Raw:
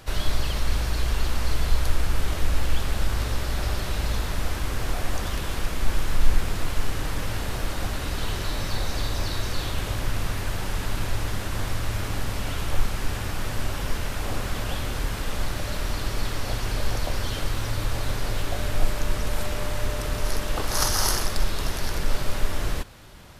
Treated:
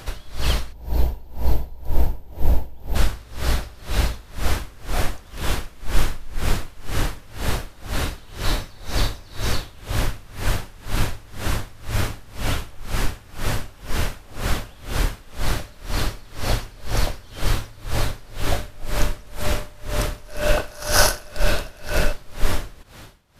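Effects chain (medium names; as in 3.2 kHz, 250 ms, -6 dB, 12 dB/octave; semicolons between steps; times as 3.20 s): 0.72–2.95 s: time-frequency box 1–12 kHz -14 dB; 20.28–22.13 s: small resonant body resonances 610/1500/2600 Hz, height 11 dB, ringing for 25 ms; logarithmic tremolo 2 Hz, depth 26 dB; trim +8 dB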